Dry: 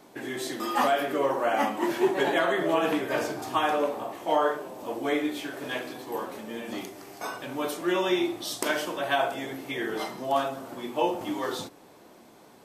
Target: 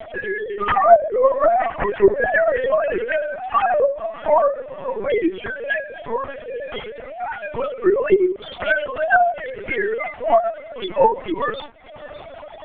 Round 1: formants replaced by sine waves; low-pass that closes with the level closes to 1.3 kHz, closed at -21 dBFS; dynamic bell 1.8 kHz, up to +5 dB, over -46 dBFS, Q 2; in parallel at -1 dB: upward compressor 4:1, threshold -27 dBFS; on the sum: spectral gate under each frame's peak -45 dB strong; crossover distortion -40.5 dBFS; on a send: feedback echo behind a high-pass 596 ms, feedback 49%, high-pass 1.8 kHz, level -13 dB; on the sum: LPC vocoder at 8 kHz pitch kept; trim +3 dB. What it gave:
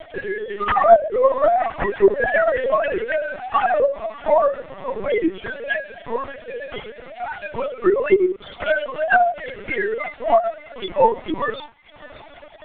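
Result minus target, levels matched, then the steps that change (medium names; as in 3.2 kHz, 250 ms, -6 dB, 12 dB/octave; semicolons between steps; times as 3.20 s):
crossover distortion: distortion +10 dB
change: crossover distortion -50.5 dBFS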